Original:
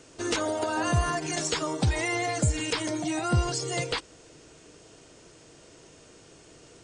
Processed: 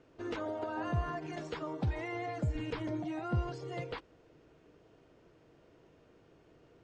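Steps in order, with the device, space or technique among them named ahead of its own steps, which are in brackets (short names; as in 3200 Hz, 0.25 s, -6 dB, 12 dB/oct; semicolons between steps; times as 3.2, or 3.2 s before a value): 2.55–3.03 low shelf 190 Hz +10.5 dB; phone in a pocket (LPF 3600 Hz 12 dB/oct; high shelf 2400 Hz -11 dB); gain -8 dB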